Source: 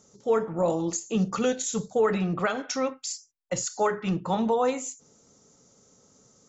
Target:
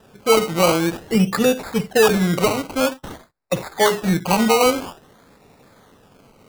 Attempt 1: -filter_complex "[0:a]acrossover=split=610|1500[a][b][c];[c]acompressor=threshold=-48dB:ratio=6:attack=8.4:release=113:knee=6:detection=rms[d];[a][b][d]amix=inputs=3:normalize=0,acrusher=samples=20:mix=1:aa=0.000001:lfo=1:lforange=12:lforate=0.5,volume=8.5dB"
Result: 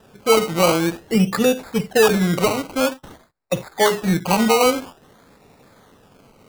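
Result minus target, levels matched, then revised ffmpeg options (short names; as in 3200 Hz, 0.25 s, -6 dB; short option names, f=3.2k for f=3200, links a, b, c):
compressor: peak gain reduction +7 dB
-filter_complex "[0:a]acrossover=split=610|1500[a][b][c];[c]acompressor=threshold=-39.5dB:ratio=6:attack=8.4:release=113:knee=6:detection=rms[d];[a][b][d]amix=inputs=3:normalize=0,acrusher=samples=20:mix=1:aa=0.000001:lfo=1:lforange=12:lforate=0.5,volume=8.5dB"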